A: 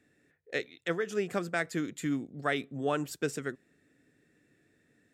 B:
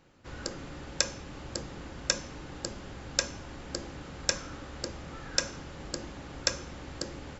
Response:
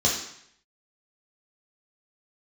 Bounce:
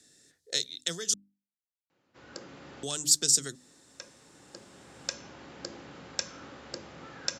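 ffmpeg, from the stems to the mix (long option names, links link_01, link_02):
-filter_complex "[0:a]aexciter=amount=12.6:drive=6.7:freq=3700,volume=1dB,asplit=3[link_01][link_02][link_03];[link_01]atrim=end=1.14,asetpts=PTS-STARTPTS,afade=type=out:start_time=1.136:duration=0.004:curve=hsin[link_04];[link_02]atrim=start=1.14:end=2.83,asetpts=PTS-STARTPTS,volume=0[link_05];[link_03]atrim=start=2.83,asetpts=PTS-STARTPTS,afade=type=in:duration=0.004:curve=hsin[link_06];[link_04][link_05][link_06]concat=n=3:v=0:a=1,asplit=2[link_07][link_08];[1:a]highpass=150,adelay=1900,volume=-2dB[link_09];[link_08]apad=whole_len=409910[link_10];[link_09][link_10]sidechaincompress=threshold=-43dB:ratio=3:attack=16:release=994[link_11];[link_07][link_11]amix=inputs=2:normalize=0,lowpass=6600,bandreject=frequency=50:width_type=h:width=6,bandreject=frequency=100:width_type=h:width=6,bandreject=frequency=150:width_type=h:width=6,bandreject=frequency=200:width_type=h:width=6,bandreject=frequency=250:width_type=h:width=6,bandreject=frequency=300:width_type=h:width=6,acrossover=split=170|3000[link_12][link_13][link_14];[link_13]acompressor=threshold=-38dB:ratio=6[link_15];[link_12][link_15][link_14]amix=inputs=3:normalize=0"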